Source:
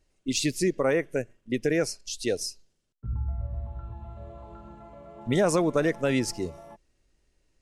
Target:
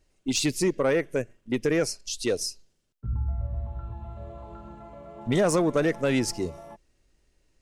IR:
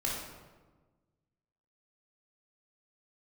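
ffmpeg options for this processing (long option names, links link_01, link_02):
-af "aeval=exprs='0.224*(cos(1*acos(clip(val(0)/0.224,-1,1)))-cos(1*PI/2))+0.0141*(cos(5*acos(clip(val(0)/0.224,-1,1)))-cos(5*PI/2))':channel_layout=same"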